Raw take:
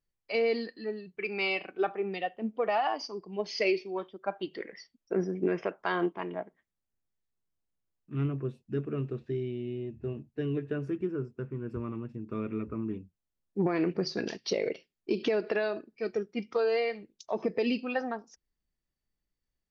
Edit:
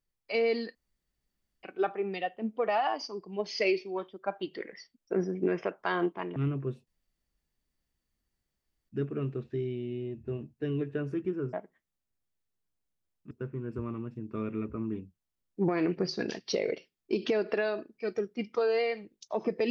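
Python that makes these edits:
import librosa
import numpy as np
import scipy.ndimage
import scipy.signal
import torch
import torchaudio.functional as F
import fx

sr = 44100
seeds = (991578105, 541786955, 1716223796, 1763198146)

y = fx.edit(x, sr, fx.room_tone_fill(start_s=0.75, length_s=0.88),
    fx.move(start_s=6.36, length_s=1.78, to_s=11.29),
    fx.insert_room_tone(at_s=8.65, length_s=2.02), tone=tone)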